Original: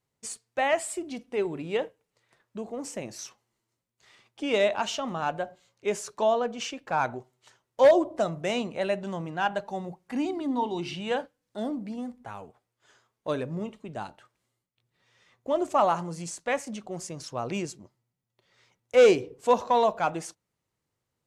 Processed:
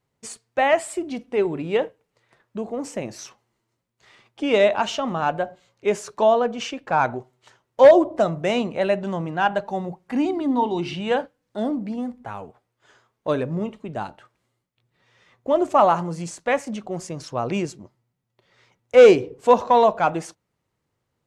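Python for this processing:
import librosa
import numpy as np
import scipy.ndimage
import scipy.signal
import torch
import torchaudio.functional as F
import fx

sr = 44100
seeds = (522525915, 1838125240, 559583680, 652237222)

y = fx.high_shelf(x, sr, hz=4000.0, db=-8.5)
y = F.gain(torch.from_numpy(y), 7.0).numpy()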